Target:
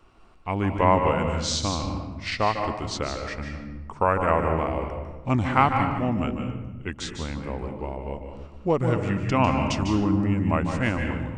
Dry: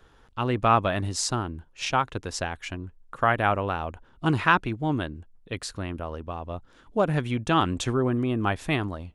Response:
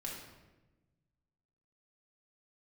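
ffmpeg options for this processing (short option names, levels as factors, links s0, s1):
-filter_complex "[0:a]asetrate=35456,aresample=44100,asplit=2[s0][s1];[1:a]atrim=start_sample=2205,adelay=149[s2];[s1][s2]afir=irnorm=-1:irlink=0,volume=0.668[s3];[s0][s3]amix=inputs=2:normalize=0"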